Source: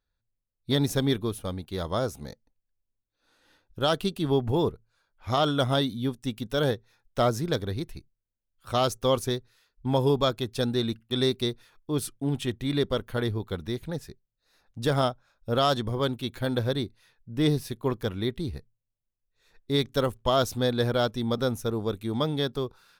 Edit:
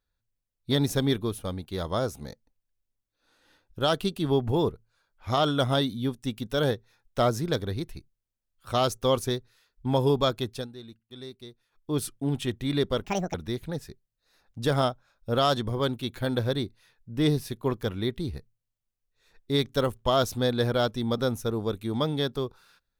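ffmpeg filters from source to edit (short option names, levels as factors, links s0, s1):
-filter_complex "[0:a]asplit=5[s0][s1][s2][s3][s4];[s0]atrim=end=10.68,asetpts=PTS-STARTPTS,afade=t=out:st=10.48:d=0.2:silence=0.141254[s5];[s1]atrim=start=10.68:end=11.7,asetpts=PTS-STARTPTS,volume=0.141[s6];[s2]atrim=start=11.7:end=13.044,asetpts=PTS-STARTPTS,afade=t=in:d=0.2:silence=0.141254[s7];[s3]atrim=start=13.04:end=13.54,asetpts=PTS-STARTPTS,asetrate=73206,aresample=44100,atrim=end_sample=13283,asetpts=PTS-STARTPTS[s8];[s4]atrim=start=13.536[s9];[s5][s6][s7]concat=n=3:v=0:a=1[s10];[s10][s8]acrossfade=d=0.004:c1=hsin:c2=hsin[s11];[s11][s9]acrossfade=d=0.004:c1=hsin:c2=hsin"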